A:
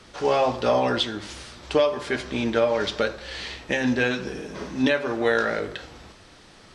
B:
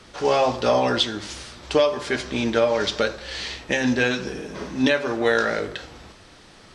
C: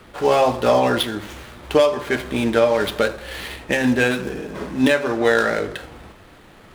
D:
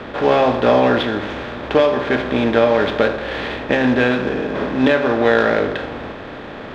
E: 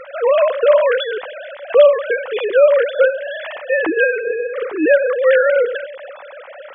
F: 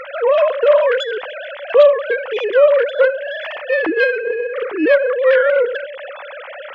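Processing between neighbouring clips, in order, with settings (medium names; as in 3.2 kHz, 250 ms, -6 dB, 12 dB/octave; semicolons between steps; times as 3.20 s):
dynamic bell 6 kHz, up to +5 dB, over -44 dBFS, Q 0.98; trim +1.5 dB
median filter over 9 samples; trim +3.5 dB
spectral levelling over time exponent 0.6; distance through air 190 m
formants replaced by sine waves; trim +1.5 dB
self-modulated delay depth 0.062 ms; tape noise reduction on one side only encoder only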